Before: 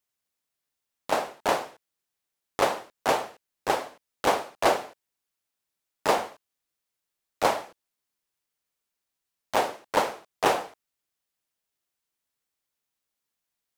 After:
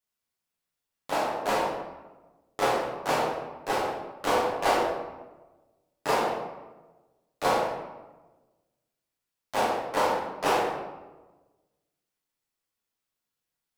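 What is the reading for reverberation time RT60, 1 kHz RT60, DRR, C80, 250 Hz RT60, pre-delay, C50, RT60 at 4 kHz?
1.2 s, 1.1 s, -5.5 dB, 4.0 dB, 1.4 s, 6 ms, 1.5 dB, 0.70 s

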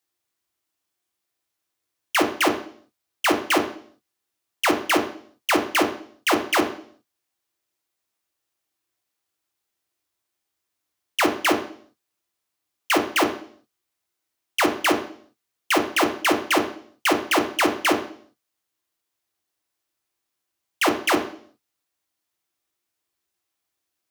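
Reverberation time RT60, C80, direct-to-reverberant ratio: 0.55 s, 13.0 dB, 3.0 dB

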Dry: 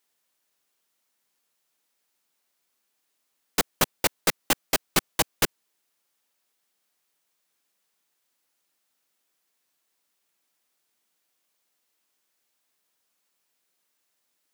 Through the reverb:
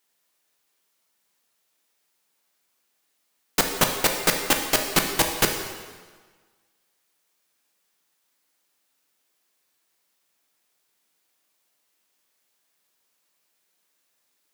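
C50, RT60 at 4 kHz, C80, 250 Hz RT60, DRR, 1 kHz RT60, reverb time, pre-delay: 5.5 dB, 1.3 s, 7.5 dB, 1.5 s, 3.0 dB, 1.5 s, 1.5 s, 9 ms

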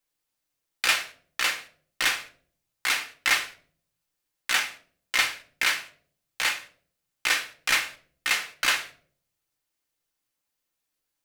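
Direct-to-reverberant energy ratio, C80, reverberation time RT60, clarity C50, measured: 3.5 dB, 19.0 dB, 0.55 s, 14.0 dB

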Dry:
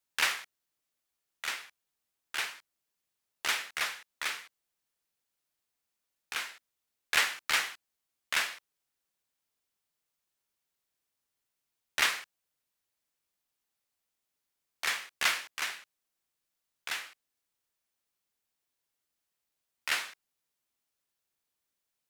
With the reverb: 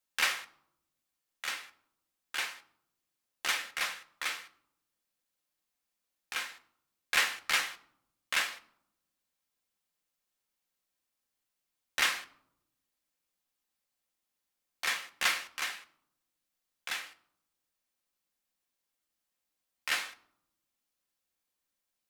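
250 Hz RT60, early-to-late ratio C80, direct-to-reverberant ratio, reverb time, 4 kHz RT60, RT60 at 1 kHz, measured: 1.2 s, 21.0 dB, 6.5 dB, 0.75 s, 0.45 s, 0.70 s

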